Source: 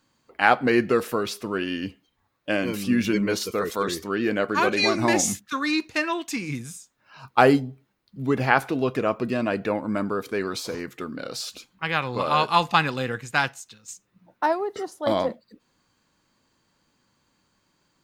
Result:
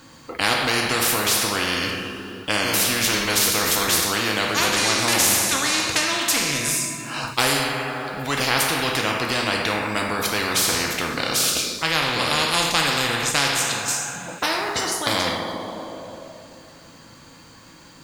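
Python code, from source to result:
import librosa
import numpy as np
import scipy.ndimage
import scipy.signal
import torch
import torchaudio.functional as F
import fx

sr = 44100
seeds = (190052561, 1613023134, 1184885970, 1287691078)

y = fx.rev_double_slope(x, sr, seeds[0], early_s=0.69, late_s=2.6, knee_db=-18, drr_db=2.0)
y = fx.spectral_comp(y, sr, ratio=4.0)
y = y * librosa.db_to_amplitude(-1.0)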